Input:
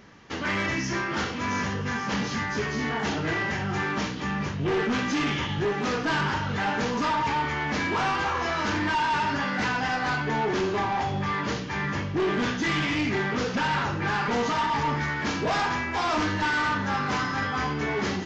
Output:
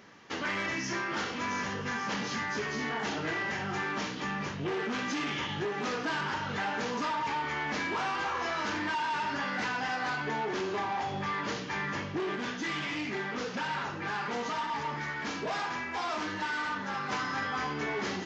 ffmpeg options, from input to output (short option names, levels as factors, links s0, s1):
-filter_complex "[0:a]asplit=3[s0][s1][s2];[s0]afade=t=out:st=12.35:d=0.02[s3];[s1]flanger=delay=3.7:depth=2.3:regen=-65:speed=1.5:shape=triangular,afade=t=in:st=12.35:d=0.02,afade=t=out:st=17.11:d=0.02[s4];[s2]afade=t=in:st=17.11:d=0.02[s5];[s3][s4][s5]amix=inputs=3:normalize=0,highpass=f=270:p=1,acompressor=threshold=0.0398:ratio=6,volume=0.841"